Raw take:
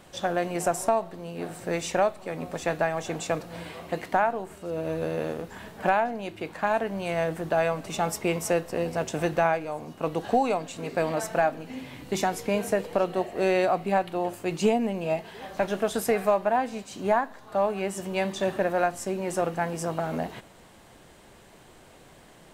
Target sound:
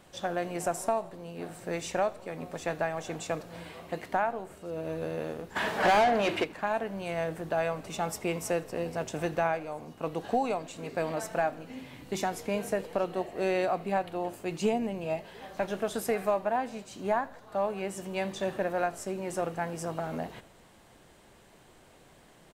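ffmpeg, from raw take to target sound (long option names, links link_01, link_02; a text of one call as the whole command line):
ffmpeg -i in.wav -filter_complex "[0:a]asplit=3[link_01][link_02][link_03];[link_01]afade=type=out:start_time=5.55:duration=0.02[link_04];[link_02]asplit=2[link_05][link_06];[link_06]highpass=frequency=720:poles=1,volume=29dB,asoftclip=type=tanh:threshold=-10.5dB[link_07];[link_05][link_07]amix=inputs=2:normalize=0,lowpass=frequency=2900:poles=1,volume=-6dB,afade=type=in:start_time=5.55:duration=0.02,afade=type=out:start_time=6.43:duration=0.02[link_08];[link_03]afade=type=in:start_time=6.43:duration=0.02[link_09];[link_04][link_08][link_09]amix=inputs=3:normalize=0,asplit=2[link_10][link_11];[link_11]asplit=4[link_12][link_13][link_14][link_15];[link_12]adelay=82,afreqshift=-51,volume=-23dB[link_16];[link_13]adelay=164,afreqshift=-102,volume=-27.3dB[link_17];[link_14]adelay=246,afreqshift=-153,volume=-31.6dB[link_18];[link_15]adelay=328,afreqshift=-204,volume=-35.9dB[link_19];[link_16][link_17][link_18][link_19]amix=inputs=4:normalize=0[link_20];[link_10][link_20]amix=inputs=2:normalize=0,volume=-5dB" out.wav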